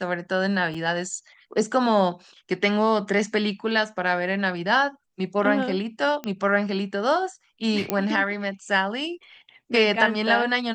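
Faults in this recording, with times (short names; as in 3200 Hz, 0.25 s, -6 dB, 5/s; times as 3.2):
0.74–0.75 gap 5.1 ms
6.24 pop -17 dBFS
7.9 pop -8 dBFS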